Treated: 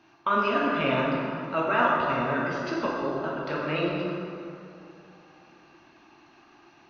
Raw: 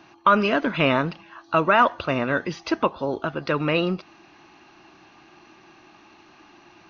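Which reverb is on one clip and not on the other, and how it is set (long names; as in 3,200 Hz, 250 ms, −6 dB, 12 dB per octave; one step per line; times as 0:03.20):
dense smooth reverb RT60 2.8 s, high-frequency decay 0.55×, DRR −5 dB
level −10.5 dB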